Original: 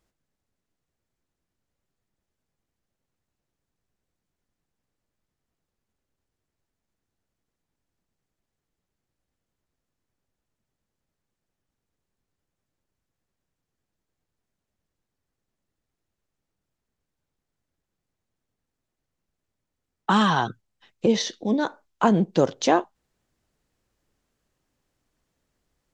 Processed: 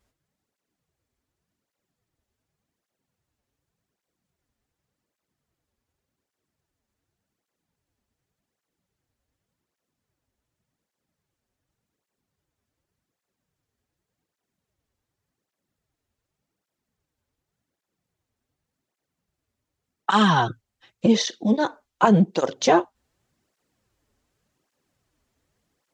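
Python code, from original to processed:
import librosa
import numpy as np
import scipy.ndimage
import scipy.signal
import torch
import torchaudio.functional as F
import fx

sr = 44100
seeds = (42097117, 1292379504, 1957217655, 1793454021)

y = fx.flanger_cancel(x, sr, hz=0.87, depth_ms=6.6)
y = y * librosa.db_to_amplitude(5.5)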